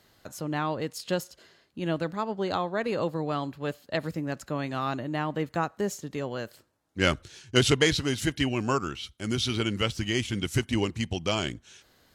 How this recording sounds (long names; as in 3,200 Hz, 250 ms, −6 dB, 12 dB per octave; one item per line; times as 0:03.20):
background noise floor −64 dBFS
spectral slope −4.5 dB per octave